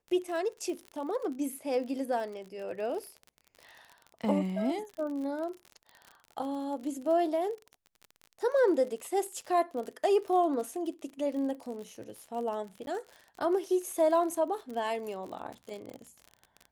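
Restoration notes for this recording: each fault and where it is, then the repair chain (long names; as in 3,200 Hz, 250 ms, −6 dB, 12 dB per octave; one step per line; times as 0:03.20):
surface crackle 46 per second −38 dBFS
0:12.86–0:12.87: drop-out 11 ms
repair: click removal
repair the gap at 0:12.86, 11 ms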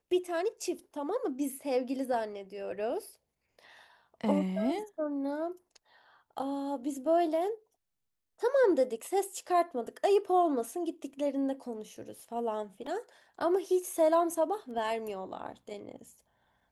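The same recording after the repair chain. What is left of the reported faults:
none of them is left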